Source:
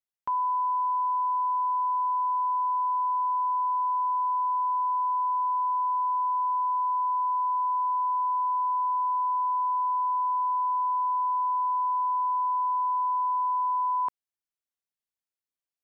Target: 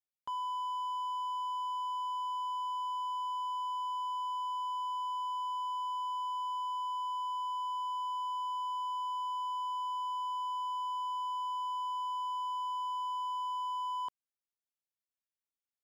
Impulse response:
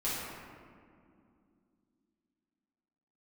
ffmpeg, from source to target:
-af "asoftclip=type=hard:threshold=-26.5dB,volume=-8dB"

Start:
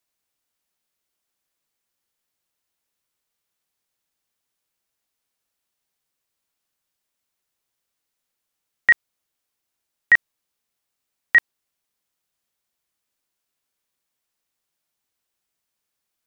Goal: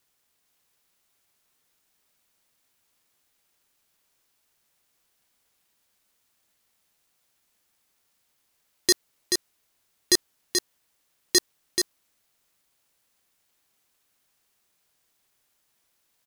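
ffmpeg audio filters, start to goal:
ffmpeg -i in.wav -filter_complex "[0:a]aeval=exprs='val(0)*sin(2*PI*750*n/s)':channel_layout=same,acontrast=67,aeval=exprs='0.708*sin(PI/2*2.82*val(0)/0.708)':channel_layout=same,asplit=2[link_01][link_02];[link_02]aecho=0:1:432:0.562[link_03];[link_01][link_03]amix=inputs=2:normalize=0,volume=-9dB" out.wav

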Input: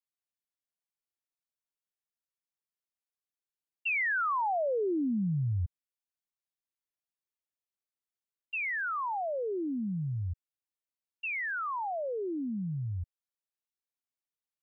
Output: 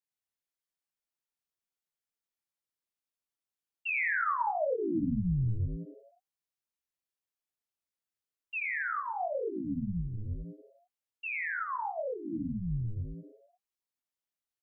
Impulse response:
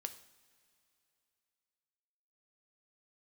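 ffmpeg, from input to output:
-filter_complex "[0:a]asplit=7[link_01][link_02][link_03][link_04][link_05][link_06][link_07];[link_02]adelay=85,afreqshift=-130,volume=-5.5dB[link_08];[link_03]adelay=170,afreqshift=-260,volume=-11.5dB[link_09];[link_04]adelay=255,afreqshift=-390,volume=-17.5dB[link_10];[link_05]adelay=340,afreqshift=-520,volume=-23.6dB[link_11];[link_06]adelay=425,afreqshift=-650,volume=-29.6dB[link_12];[link_07]adelay=510,afreqshift=-780,volume=-35.6dB[link_13];[link_01][link_08][link_09][link_10][link_11][link_12][link_13]amix=inputs=7:normalize=0,flanger=delay=17.5:depth=7.4:speed=1.9,volume=1dB"

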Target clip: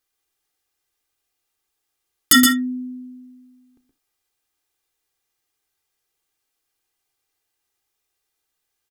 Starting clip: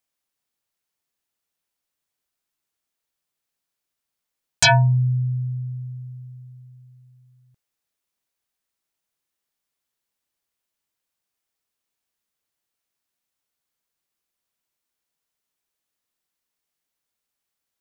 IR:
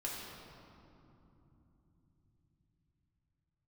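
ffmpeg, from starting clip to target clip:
-filter_complex "[0:a]aecho=1:1:5:0.6,aecho=1:1:242|270:0.501|0.282,asplit=2[link_01][link_02];[1:a]atrim=start_sample=2205,atrim=end_sample=4410,adelay=58[link_03];[link_02][link_03]afir=irnorm=-1:irlink=0,volume=-11.5dB[link_04];[link_01][link_04]amix=inputs=2:normalize=0,asetrate=88200,aresample=44100,alimiter=level_in=8.5dB:limit=-1dB:release=50:level=0:latency=1,volume=-2.5dB"

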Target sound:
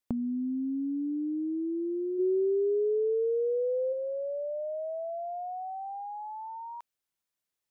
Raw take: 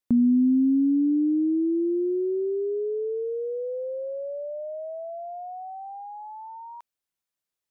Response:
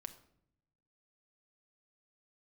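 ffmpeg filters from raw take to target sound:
-filter_complex "[0:a]acompressor=threshold=-30dB:ratio=12,asplit=3[link_01][link_02][link_03];[link_01]afade=type=out:start_time=2.18:duration=0.02[link_04];[link_02]tiltshelf=frequency=800:gain=9.5,afade=type=in:start_time=2.18:duration=0.02,afade=type=out:start_time=3.92:duration=0.02[link_05];[link_03]afade=type=in:start_time=3.92:duration=0.02[link_06];[link_04][link_05][link_06]amix=inputs=3:normalize=0"

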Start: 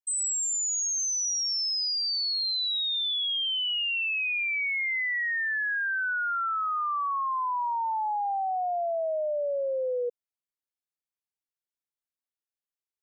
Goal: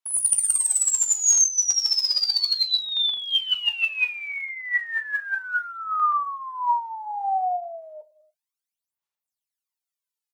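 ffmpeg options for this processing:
ffmpeg -i in.wav -filter_complex "[0:a]tiltshelf=frequency=1200:gain=-8.5,asplit=2[link_01][link_02];[link_02]adelay=123,lowpass=frequency=2000:poles=1,volume=-22dB,asplit=2[link_03][link_04];[link_04]adelay=123,lowpass=frequency=2000:poles=1,volume=0.47,asplit=2[link_05][link_06];[link_06]adelay=123,lowpass=frequency=2000:poles=1,volume=0.47[link_07];[link_03][link_05][link_07]amix=inputs=3:normalize=0[link_08];[link_01][link_08]amix=inputs=2:normalize=0,asetrate=55566,aresample=44100,aphaser=in_gain=1:out_gain=1:delay=2.7:decay=0.76:speed=0.33:type=sinusoidal,equalizer=frequency=910:width=1.6:gain=8.5,asplit=2[link_09][link_10];[link_10]aecho=0:1:18|39:0.237|0.158[link_11];[link_09][link_11]amix=inputs=2:normalize=0,volume=-5.5dB" out.wav

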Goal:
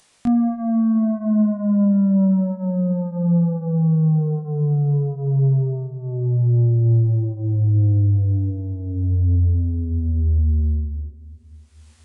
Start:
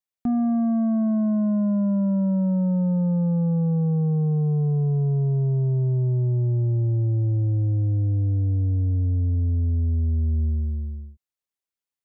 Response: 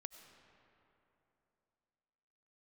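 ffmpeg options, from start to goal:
-filter_complex "[0:a]acompressor=mode=upward:threshold=-32dB:ratio=2.5,flanger=delay=19.5:depth=6.7:speed=0.51,asplit=2[link_01][link_02];[1:a]atrim=start_sample=2205,asetrate=35280,aresample=44100[link_03];[link_02][link_03]afir=irnorm=-1:irlink=0,volume=-3dB[link_04];[link_01][link_04]amix=inputs=2:normalize=0,aresample=22050,aresample=44100,volume=3dB"

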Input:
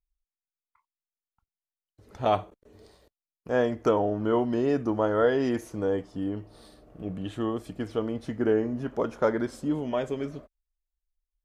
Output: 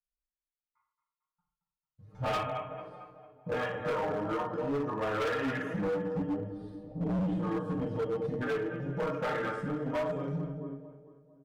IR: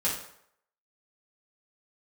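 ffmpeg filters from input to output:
-filter_complex "[0:a]highshelf=frequency=4700:gain=-12,aecho=1:1:6.5:0.74,acrossover=split=1500[link_01][link_02];[link_01]acompressor=threshold=-33dB:ratio=16[link_03];[link_03][link_02]amix=inputs=2:normalize=0,afwtdn=0.01,asplit=2[link_04][link_05];[link_05]adelay=224,lowpass=frequency=3000:poles=1,volume=-9dB,asplit=2[link_06][link_07];[link_07]adelay=224,lowpass=frequency=3000:poles=1,volume=0.5,asplit=2[link_08][link_09];[link_09]adelay=224,lowpass=frequency=3000:poles=1,volume=0.5,asplit=2[link_10][link_11];[link_11]adelay=224,lowpass=frequency=3000:poles=1,volume=0.5,asplit=2[link_12][link_13];[link_13]adelay=224,lowpass=frequency=3000:poles=1,volume=0.5,asplit=2[link_14][link_15];[link_15]adelay=224,lowpass=frequency=3000:poles=1,volume=0.5[link_16];[link_04][link_06][link_08][link_10][link_12][link_14][link_16]amix=inputs=7:normalize=0,adynamicequalizer=threshold=0.00398:dfrequency=320:dqfactor=1.9:tfrequency=320:tqfactor=1.9:attack=5:release=100:ratio=0.375:range=2:mode=cutabove:tftype=bell,flanger=delay=5.6:depth=3.5:regen=11:speed=0.68:shape=sinusoidal[link_17];[1:a]atrim=start_sample=2205,afade=type=out:start_time=0.22:duration=0.01,atrim=end_sample=10143[link_18];[link_17][link_18]afir=irnorm=-1:irlink=0,asoftclip=type=hard:threshold=-30.5dB,volume=2.5dB"

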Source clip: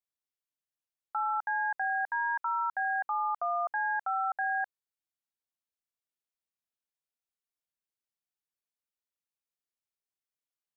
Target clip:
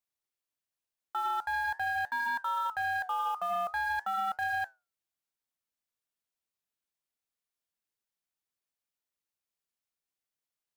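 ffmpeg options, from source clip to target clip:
ffmpeg -i in.wav -af "acrusher=bits=5:mode=log:mix=0:aa=0.000001,flanger=delay=6.8:depth=6.1:regen=-80:speed=0.45:shape=triangular,aeval=exprs='0.0531*(cos(1*acos(clip(val(0)/0.0531,-1,1)))-cos(1*PI/2))+0.00531*(cos(5*acos(clip(val(0)/0.0531,-1,1)))-cos(5*PI/2))+0.00106*(cos(7*acos(clip(val(0)/0.0531,-1,1)))-cos(7*PI/2))':channel_layout=same,volume=2.5dB" out.wav

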